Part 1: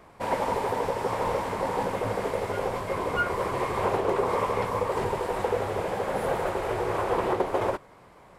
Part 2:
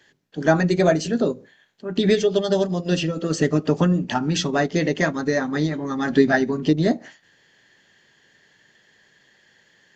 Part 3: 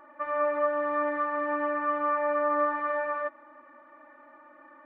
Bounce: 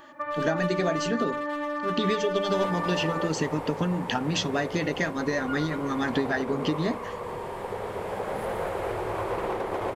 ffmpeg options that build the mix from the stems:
-filter_complex "[0:a]equalizer=f=5600:w=1.1:g=-4,adelay=2200,volume=1,asplit=2[s0][s1];[s1]volume=0.316[s2];[1:a]equalizer=f=2600:w=1.1:g=5.5,acompressor=threshold=0.0891:ratio=6,volume=0.75,asplit=2[s3][s4];[2:a]bass=f=250:g=11,treble=f=4000:g=12,volume=1.26[s5];[s4]apad=whole_len=466934[s6];[s0][s6]sidechaincompress=threshold=0.00794:ratio=8:attack=16:release=1090[s7];[s7][s5]amix=inputs=2:normalize=0,asoftclip=type=hard:threshold=0.0794,acompressor=threshold=0.0398:ratio=6,volume=1[s8];[s2]aecho=0:1:115|230|345|460|575|690|805|920|1035:1|0.58|0.336|0.195|0.113|0.0656|0.0381|0.0221|0.0128[s9];[s3][s8][s9]amix=inputs=3:normalize=0"

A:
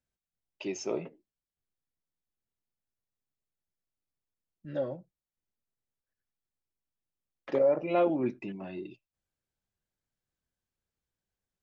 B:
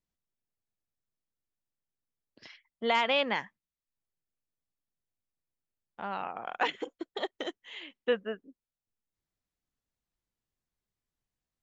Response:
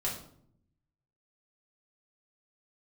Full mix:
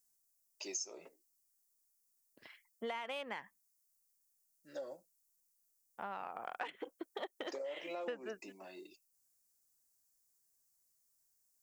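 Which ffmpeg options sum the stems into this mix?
-filter_complex "[0:a]highpass=360,acompressor=threshold=0.0316:ratio=6,aexciter=amount=14.1:drive=4.4:freq=4800,volume=0.501[s0];[1:a]aemphasis=mode=reproduction:type=50fm,adynamicsmooth=sensitivity=5.5:basefreq=4100,volume=0.794[s1];[s0][s1]amix=inputs=2:normalize=0,lowshelf=f=290:g=-8.5,acompressor=threshold=0.0126:ratio=10"

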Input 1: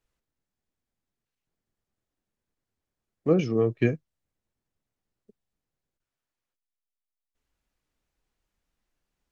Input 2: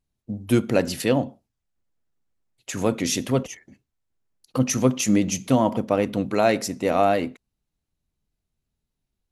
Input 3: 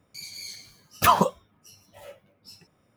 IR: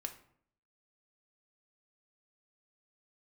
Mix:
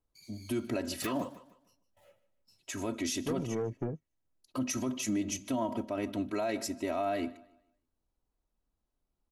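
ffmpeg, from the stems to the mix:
-filter_complex "[0:a]lowpass=f=1200:w=0.5412,lowpass=f=1200:w=1.3066,acompressor=threshold=0.0794:ratio=6,asoftclip=type=tanh:threshold=0.0631,volume=0.668[s0];[1:a]aecho=1:1:3.1:0.93,volume=0.299,asplit=2[s1][s2];[s2]volume=0.0708[s3];[2:a]agate=range=0.1:threshold=0.00316:ratio=16:detection=peak,volume=0.126,asplit=2[s4][s5];[s5]volume=0.15[s6];[s3][s6]amix=inputs=2:normalize=0,aecho=0:1:151|302|453|604:1|0.31|0.0961|0.0298[s7];[s0][s1][s4][s7]amix=inputs=4:normalize=0,alimiter=limit=0.0631:level=0:latency=1:release=52"

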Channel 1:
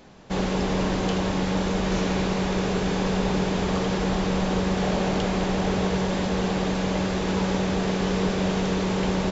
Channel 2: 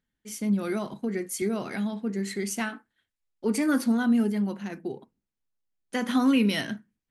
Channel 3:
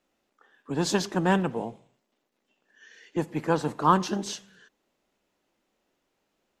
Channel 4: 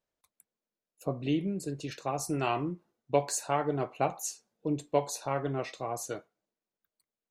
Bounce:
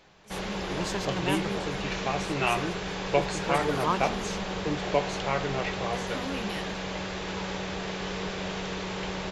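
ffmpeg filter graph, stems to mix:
-filter_complex "[0:a]equalizer=f=2600:w=0.4:g=7.5,volume=0.316[s0];[1:a]volume=0.316,asplit=2[s1][s2];[s2]volume=0.126[s3];[2:a]volume=0.447[s4];[3:a]lowpass=4300,equalizer=f=2300:t=o:w=1.3:g=9,volume=1.12[s5];[s3]aecho=0:1:198|396|594|792|990|1188|1386|1584:1|0.54|0.292|0.157|0.085|0.0459|0.0248|0.0134[s6];[s0][s1][s4][s5][s6]amix=inputs=5:normalize=0,equalizer=f=240:t=o:w=0.3:g=-12.5"

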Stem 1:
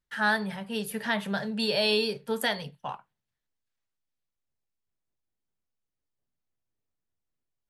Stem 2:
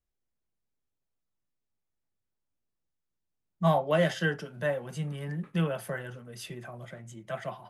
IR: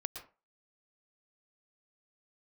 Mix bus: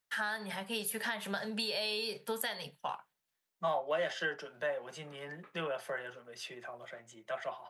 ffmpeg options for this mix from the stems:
-filter_complex "[0:a]highpass=f=570:p=1,highshelf=f=9100:g=6.5,acompressor=threshold=0.0251:ratio=6,volume=1.33[s0];[1:a]acrossover=split=370 7000:gain=0.0891 1 0.224[s1][s2][s3];[s1][s2][s3]amix=inputs=3:normalize=0,volume=1[s4];[s0][s4]amix=inputs=2:normalize=0,acompressor=threshold=0.02:ratio=2"

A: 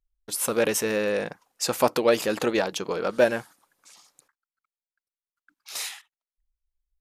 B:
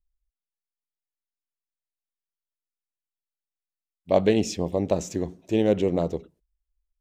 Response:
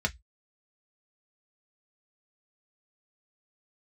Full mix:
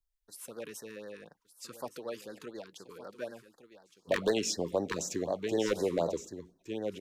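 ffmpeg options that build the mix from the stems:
-filter_complex "[0:a]volume=0.106,asplit=2[s0][s1];[s1]volume=0.211[s2];[1:a]lowshelf=f=430:g=-8,volume=1.06,asplit=2[s3][s4];[s4]volume=0.282[s5];[s2][s5]amix=inputs=2:normalize=0,aecho=0:1:1165:1[s6];[s0][s3][s6]amix=inputs=3:normalize=0,acrossover=split=150|450[s7][s8][s9];[s7]acompressor=threshold=0.00251:ratio=4[s10];[s8]acompressor=threshold=0.0224:ratio=4[s11];[s9]acompressor=threshold=0.112:ratio=4[s12];[s10][s11][s12]amix=inputs=3:normalize=0,aeval=exprs='0.119*(abs(mod(val(0)/0.119+3,4)-2)-1)':c=same,afftfilt=real='re*(1-between(b*sr/1024,620*pow(2800/620,0.5+0.5*sin(2*PI*4*pts/sr))/1.41,620*pow(2800/620,0.5+0.5*sin(2*PI*4*pts/sr))*1.41))':imag='im*(1-between(b*sr/1024,620*pow(2800/620,0.5+0.5*sin(2*PI*4*pts/sr))/1.41,620*pow(2800/620,0.5+0.5*sin(2*PI*4*pts/sr))*1.41))':win_size=1024:overlap=0.75"

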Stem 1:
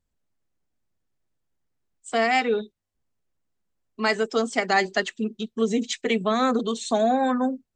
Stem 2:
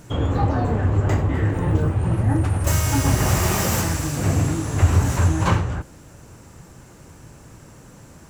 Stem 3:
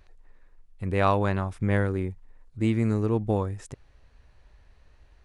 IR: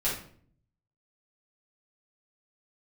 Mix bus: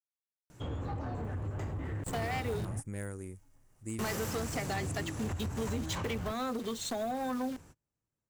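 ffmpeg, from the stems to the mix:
-filter_complex "[0:a]acrusher=bits=7:dc=4:mix=0:aa=0.000001,volume=0.708,asplit=2[s0][s1];[1:a]acompressor=threshold=0.112:ratio=6,asoftclip=type=tanh:threshold=0.126,adelay=500,volume=0.251[s2];[2:a]aexciter=amount=14.7:drive=6.2:freq=5900,adelay=1250,volume=0.178[s3];[s1]apad=whole_len=388064[s4];[s2][s4]sidechaingate=range=0.02:threshold=0.00224:ratio=16:detection=peak[s5];[s0][s3]amix=inputs=2:normalize=0,acompressor=threshold=0.0282:ratio=8,volume=1[s6];[s5][s6]amix=inputs=2:normalize=0,asoftclip=type=hard:threshold=0.0335"

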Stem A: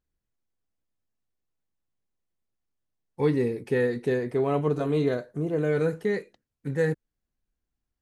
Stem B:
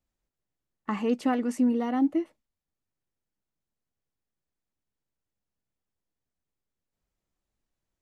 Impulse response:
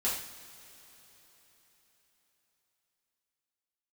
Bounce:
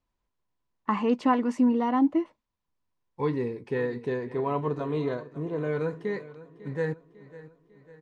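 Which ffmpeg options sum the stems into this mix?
-filter_complex "[0:a]volume=0.596,asplit=2[s0][s1];[s1]volume=0.133[s2];[1:a]volume=1.19[s3];[s2]aecho=0:1:549|1098|1647|2196|2745|3294|3843|4392:1|0.52|0.27|0.141|0.0731|0.038|0.0198|0.0103[s4];[s0][s3][s4]amix=inputs=3:normalize=0,lowpass=5100,equalizer=f=1000:t=o:w=0.22:g=13"

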